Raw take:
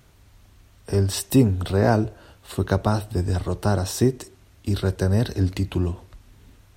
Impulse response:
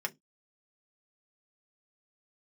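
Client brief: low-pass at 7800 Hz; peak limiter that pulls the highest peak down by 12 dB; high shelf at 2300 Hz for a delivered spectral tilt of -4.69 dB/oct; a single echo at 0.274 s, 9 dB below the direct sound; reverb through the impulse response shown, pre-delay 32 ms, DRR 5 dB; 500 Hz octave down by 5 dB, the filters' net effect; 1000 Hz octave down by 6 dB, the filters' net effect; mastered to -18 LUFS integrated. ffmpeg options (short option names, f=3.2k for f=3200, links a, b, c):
-filter_complex "[0:a]lowpass=7.8k,equalizer=f=500:t=o:g=-5.5,equalizer=f=1k:t=o:g=-8,highshelf=f=2.3k:g=8.5,alimiter=limit=-19dB:level=0:latency=1,aecho=1:1:274:0.355,asplit=2[a][b];[1:a]atrim=start_sample=2205,adelay=32[c];[b][c]afir=irnorm=-1:irlink=0,volume=-8.5dB[d];[a][d]amix=inputs=2:normalize=0,volume=11dB"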